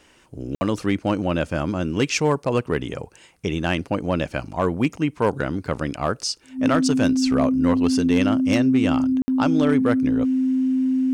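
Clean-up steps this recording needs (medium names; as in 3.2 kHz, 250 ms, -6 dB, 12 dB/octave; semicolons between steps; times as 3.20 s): clip repair -11 dBFS; band-stop 260 Hz, Q 30; interpolate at 0.55/9.22 s, 60 ms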